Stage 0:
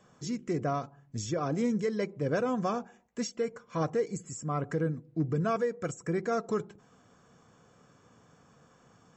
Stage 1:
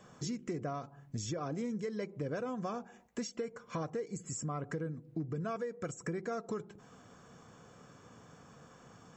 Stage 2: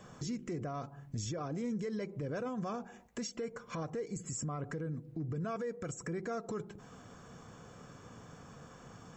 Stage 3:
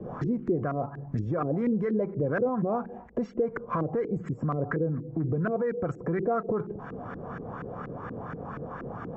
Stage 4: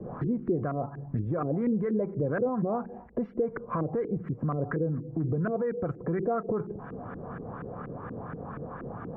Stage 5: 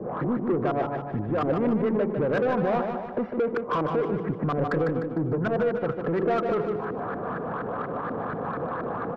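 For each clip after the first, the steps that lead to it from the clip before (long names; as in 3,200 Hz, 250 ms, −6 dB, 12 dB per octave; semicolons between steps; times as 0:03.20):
downward compressor 5 to 1, threshold −40 dBFS, peak gain reduction 14 dB; level +4 dB
low-shelf EQ 77 Hz +8.5 dB; brickwall limiter −33.5 dBFS, peak gain reduction 8.5 dB; level +3 dB
auto-filter low-pass saw up 4.2 Hz 320–1,900 Hz; multiband upward and downward compressor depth 40%; level +8.5 dB
high-frequency loss of the air 480 metres
mid-hump overdrive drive 20 dB, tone 1,700 Hz, clips at −17 dBFS; on a send: repeating echo 151 ms, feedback 47%, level −6 dB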